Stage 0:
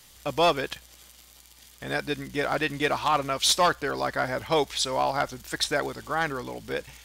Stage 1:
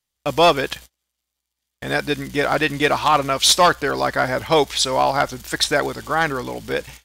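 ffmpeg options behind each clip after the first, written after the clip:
ffmpeg -i in.wav -af "agate=range=-35dB:threshold=-45dB:ratio=16:detection=peak,volume=7.5dB" out.wav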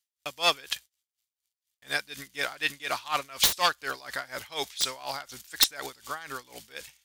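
ffmpeg -i in.wav -af "tiltshelf=frequency=1200:gain=-9.5,aeval=exprs='(mod(0.944*val(0)+1,2)-1)/0.944':channel_layout=same,aeval=exprs='val(0)*pow(10,-19*(0.5-0.5*cos(2*PI*4.1*n/s))/20)':channel_layout=same,volume=-8dB" out.wav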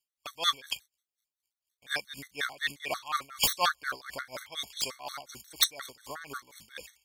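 ffmpeg -i in.wav -af "afftfilt=real='re*gt(sin(2*PI*5.6*pts/sr)*(1-2*mod(floor(b*sr/1024/1100),2)),0)':imag='im*gt(sin(2*PI*5.6*pts/sr)*(1-2*mod(floor(b*sr/1024/1100),2)),0)':win_size=1024:overlap=0.75" out.wav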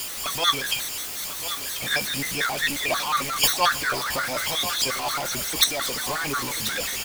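ffmpeg -i in.wav -af "aeval=exprs='val(0)+0.5*0.0422*sgn(val(0))':channel_layout=same,aecho=1:1:1039:0.266,flanger=delay=2.8:depth=9.4:regen=-59:speed=0.35:shape=triangular,volume=8dB" out.wav

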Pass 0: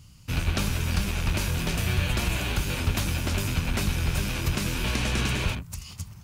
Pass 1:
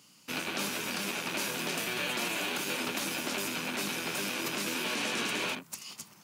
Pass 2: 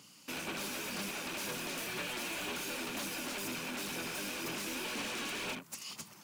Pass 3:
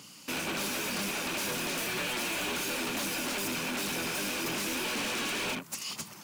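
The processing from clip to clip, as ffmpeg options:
ffmpeg -i in.wav -af "highpass=frequency=240:width=0.5412,highpass=frequency=240:width=1.3066,alimiter=limit=-22.5dB:level=0:latency=1:release=30" out.wav
ffmpeg -i in.wav -filter_complex "[0:a]asplit=2[link_01][link_02];[link_02]acompressor=threshold=-42dB:ratio=6,volume=0dB[link_03];[link_01][link_03]amix=inputs=2:normalize=0,asoftclip=type=hard:threshold=-32dB,aphaser=in_gain=1:out_gain=1:delay=3.7:decay=0.3:speed=2:type=sinusoidal,volume=-5dB" out.wav
ffmpeg -i in.wav -af "asoftclip=type=hard:threshold=-38dB,volume=7.5dB" out.wav

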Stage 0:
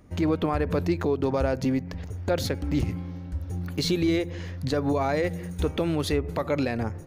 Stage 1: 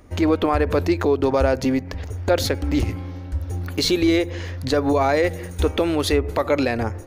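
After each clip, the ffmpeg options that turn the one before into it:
ffmpeg -i in.wav -af "equalizer=frequency=160:width_type=o:width=0.65:gain=-14.5,volume=7.5dB" out.wav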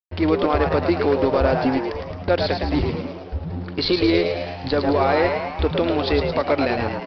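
ffmpeg -i in.wav -filter_complex "[0:a]aresample=11025,aeval=exprs='sgn(val(0))*max(abs(val(0))-0.0211,0)':channel_layout=same,aresample=44100,asplit=9[link_01][link_02][link_03][link_04][link_05][link_06][link_07][link_08][link_09];[link_02]adelay=109,afreqshift=91,volume=-5.5dB[link_10];[link_03]adelay=218,afreqshift=182,volume=-10.4dB[link_11];[link_04]adelay=327,afreqshift=273,volume=-15.3dB[link_12];[link_05]adelay=436,afreqshift=364,volume=-20.1dB[link_13];[link_06]adelay=545,afreqshift=455,volume=-25dB[link_14];[link_07]adelay=654,afreqshift=546,volume=-29.9dB[link_15];[link_08]adelay=763,afreqshift=637,volume=-34.8dB[link_16];[link_09]adelay=872,afreqshift=728,volume=-39.7dB[link_17];[link_01][link_10][link_11][link_12][link_13][link_14][link_15][link_16][link_17]amix=inputs=9:normalize=0" out.wav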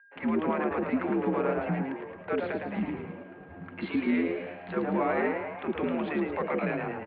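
ffmpeg -i in.wav -filter_complex "[0:a]aeval=exprs='val(0)+0.00398*sin(2*PI*1700*n/s)':channel_layout=same,highpass=frequency=250:width_type=q:width=0.5412,highpass=frequency=250:width_type=q:width=1.307,lowpass=frequency=2700:width_type=q:width=0.5176,lowpass=frequency=2700:width_type=q:width=0.7071,lowpass=frequency=2700:width_type=q:width=1.932,afreqshift=-86,acrossover=split=490[link_01][link_02];[link_01]adelay=40[link_03];[link_03][link_02]amix=inputs=2:normalize=0,volume=-7dB" out.wav

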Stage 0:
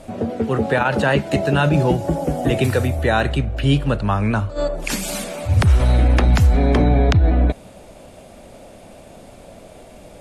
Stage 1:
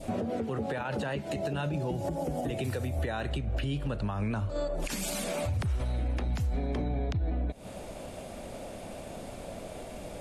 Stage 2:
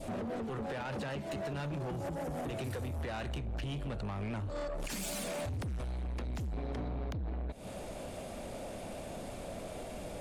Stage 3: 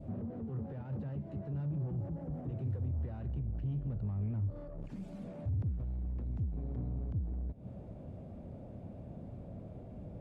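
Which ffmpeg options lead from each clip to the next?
ffmpeg -i in.wav -af "adynamicequalizer=threshold=0.02:dfrequency=1400:dqfactor=1.1:tfrequency=1400:tqfactor=1.1:attack=5:release=100:ratio=0.375:range=2:mode=cutabove:tftype=bell,acompressor=threshold=-23dB:ratio=4,alimiter=limit=-23.5dB:level=0:latency=1:release=170" out.wav
ffmpeg -i in.wav -af "asoftclip=type=tanh:threshold=-34.5dB" out.wav
ffmpeg -i in.wav -af "bandpass=frequency=110:width_type=q:width=1.3:csg=0,volume=5.5dB" out.wav

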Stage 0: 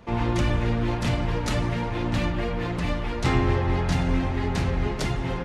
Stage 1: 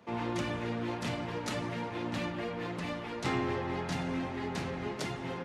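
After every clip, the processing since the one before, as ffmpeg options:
ffmpeg -i in.wav -af "highpass=170,volume=-7dB" out.wav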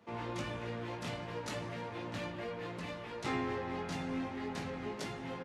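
ffmpeg -i in.wav -filter_complex "[0:a]asplit=2[link_01][link_02];[link_02]adelay=19,volume=-5.5dB[link_03];[link_01][link_03]amix=inputs=2:normalize=0,volume=-5.5dB" out.wav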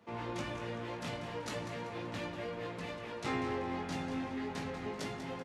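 ffmpeg -i in.wav -af "aecho=1:1:192|384|576|768:0.299|0.122|0.0502|0.0206" out.wav

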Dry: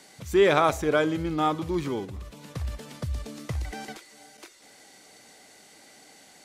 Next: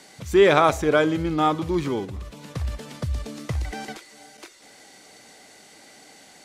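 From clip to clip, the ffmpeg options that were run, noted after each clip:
ffmpeg -i in.wav -af "highshelf=frequency=12000:gain=-6.5,volume=4dB" out.wav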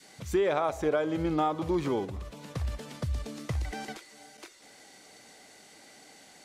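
ffmpeg -i in.wav -af "adynamicequalizer=threshold=0.0251:dfrequency=660:dqfactor=0.92:tfrequency=660:tqfactor=0.92:attack=5:release=100:ratio=0.375:range=4:mode=boostabove:tftype=bell,acompressor=threshold=-19dB:ratio=10,volume=-4.5dB" out.wav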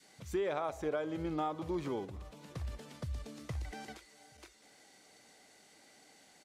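ffmpeg -i in.wav -filter_complex "[0:a]asplit=2[link_01][link_02];[link_02]adelay=816.3,volume=-27dB,highshelf=frequency=4000:gain=-18.4[link_03];[link_01][link_03]amix=inputs=2:normalize=0,volume=-8dB" out.wav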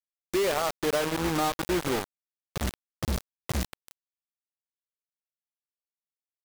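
ffmpeg -i in.wav -af "acrusher=bits=5:mix=0:aa=0.000001,volume=7.5dB" out.wav

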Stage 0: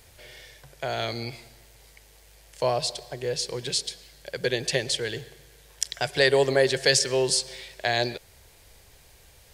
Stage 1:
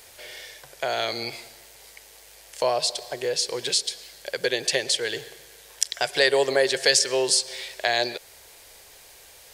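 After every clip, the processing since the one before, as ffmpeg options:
ffmpeg -i in.wav -filter_complex "[0:a]bass=frequency=250:gain=-15,treble=frequency=4000:gain=2,asplit=2[link_01][link_02];[link_02]acompressor=threshold=-31dB:ratio=6,volume=2dB[link_03];[link_01][link_03]amix=inputs=2:normalize=0,volume=-1dB" out.wav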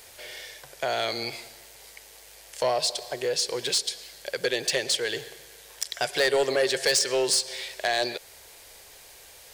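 ffmpeg -i in.wav -af "asoftclip=type=tanh:threshold=-16dB" out.wav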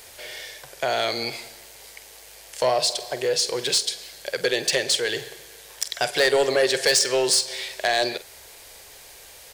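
ffmpeg -i in.wav -filter_complex "[0:a]asplit=2[link_01][link_02];[link_02]adelay=47,volume=-14dB[link_03];[link_01][link_03]amix=inputs=2:normalize=0,volume=3.5dB" out.wav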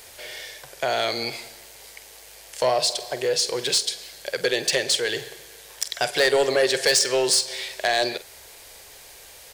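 ffmpeg -i in.wav -af anull out.wav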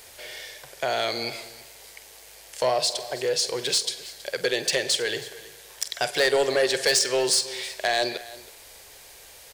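ffmpeg -i in.wav -af "aecho=1:1:322:0.119,volume=-2dB" out.wav

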